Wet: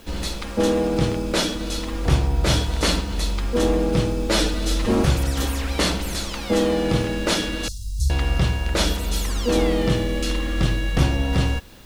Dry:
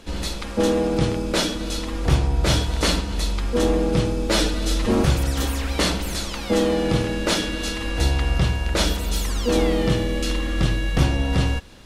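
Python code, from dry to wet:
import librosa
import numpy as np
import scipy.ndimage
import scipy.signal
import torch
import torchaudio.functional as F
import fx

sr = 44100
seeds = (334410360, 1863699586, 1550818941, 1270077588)

y = fx.dmg_noise_colour(x, sr, seeds[0], colour='blue', level_db=-57.0)
y = fx.cheby2_bandstop(y, sr, low_hz=300.0, high_hz=2300.0, order=4, stop_db=50, at=(7.68, 8.1))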